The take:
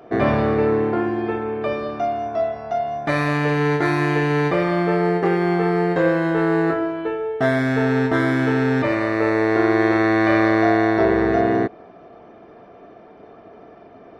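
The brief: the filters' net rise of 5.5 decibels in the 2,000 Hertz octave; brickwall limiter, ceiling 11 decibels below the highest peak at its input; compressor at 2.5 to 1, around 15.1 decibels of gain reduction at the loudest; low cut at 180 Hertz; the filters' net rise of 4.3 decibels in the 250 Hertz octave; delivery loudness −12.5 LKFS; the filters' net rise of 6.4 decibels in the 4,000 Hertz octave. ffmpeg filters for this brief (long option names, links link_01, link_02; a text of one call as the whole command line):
ffmpeg -i in.wav -af "highpass=180,equalizer=frequency=250:width_type=o:gain=7,equalizer=frequency=2000:width_type=o:gain=5.5,equalizer=frequency=4000:width_type=o:gain=6,acompressor=threshold=-34dB:ratio=2.5,volume=24dB,alimiter=limit=-4dB:level=0:latency=1" out.wav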